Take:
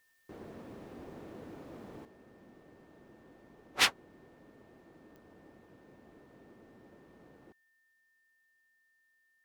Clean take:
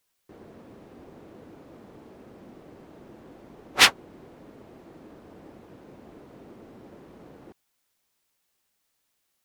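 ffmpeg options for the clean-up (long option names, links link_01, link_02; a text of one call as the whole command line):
ffmpeg -i in.wav -af "adeclick=threshold=4,bandreject=frequency=1800:width=30,asetnsamples=nb_out_samples=441:pad=0,asendcmd='2.05 volume volume 10dB',volume=0dB" out.wav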